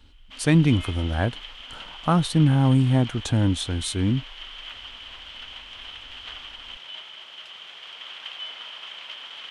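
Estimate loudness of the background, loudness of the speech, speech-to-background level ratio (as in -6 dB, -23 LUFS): -37.5 LUFS, -22.5 LUFS, 15.0 dB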